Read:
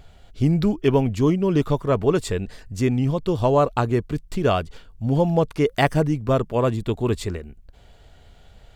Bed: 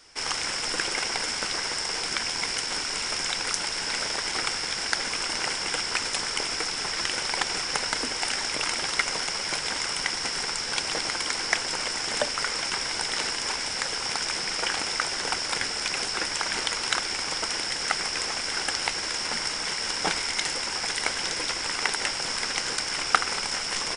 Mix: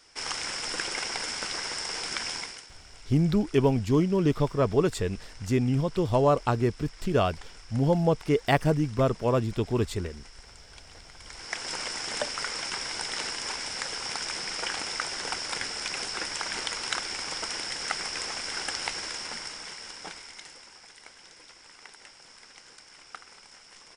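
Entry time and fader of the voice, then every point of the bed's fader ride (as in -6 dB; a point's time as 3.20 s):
2.70 s, -4.0 dB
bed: 2.35 s -4 dB
2.73 s -22.5 dB
11.13 s -22.5 dB
11.69 s -4.5 dB
18.98 s -4.5 dB
20.91 s -22.5 dB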